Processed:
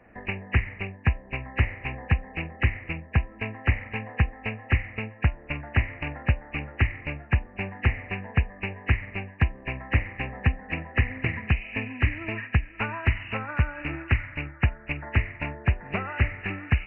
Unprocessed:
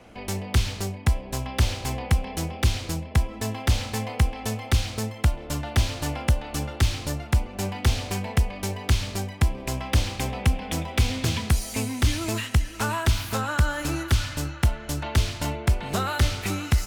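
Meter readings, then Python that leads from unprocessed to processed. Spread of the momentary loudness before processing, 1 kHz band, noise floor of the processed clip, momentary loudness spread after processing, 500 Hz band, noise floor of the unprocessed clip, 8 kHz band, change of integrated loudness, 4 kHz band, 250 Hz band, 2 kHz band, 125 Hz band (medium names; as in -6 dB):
6 LU, -4.5 dB, -48 dBFS, 7 LU, -4.5 dB, -39 dBFS, under -40 dB, -2.0 dB, -11.5 dB, -3.5 dB, +3.5 dB, -2.0 dB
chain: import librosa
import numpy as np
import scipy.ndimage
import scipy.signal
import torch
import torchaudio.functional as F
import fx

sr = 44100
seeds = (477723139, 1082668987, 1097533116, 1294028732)

y = fx.freq_compress(x, sr, knee_hz=1600.0, ratio=4.0)
y = fx.transient(y, sr, attack_db=6, sustain_db=-3)
y = F.gain(torch.from_numpy(y), -6.5).numpy()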